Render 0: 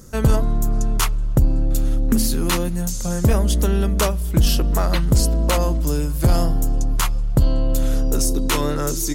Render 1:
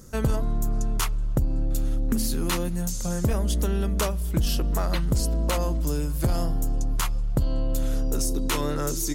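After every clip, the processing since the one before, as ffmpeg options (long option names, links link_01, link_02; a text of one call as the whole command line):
ffmpeg -i in.wav -af "acompressor=threshold=-17dB:ratio=2.5,volume=-4dB" out.wav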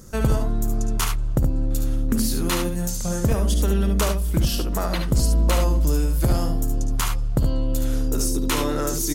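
ffmpeg -i in.wav -af "aecho=1:1:57|72:0.251|0.473,volume=2.5dB" out.wav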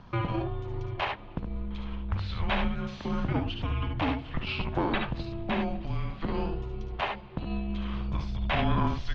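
ffmpeg -i in.wav -af "alimiter=limit=-18.5dB:level=0:latency=1:release=20,highpass=frequency=270:width_type=q:width=0.5412,highpass=frequency=270:width_type=q:width=1.307,lowpass=frequency=3600:width_type=q:width=0.5176,lowpass=frequency=3600:width_type=q:width=0.7071,lowpass=frequency=3600:width_type=q:width=1.932,afreqshift=-320,volume=4.5dB" out.wav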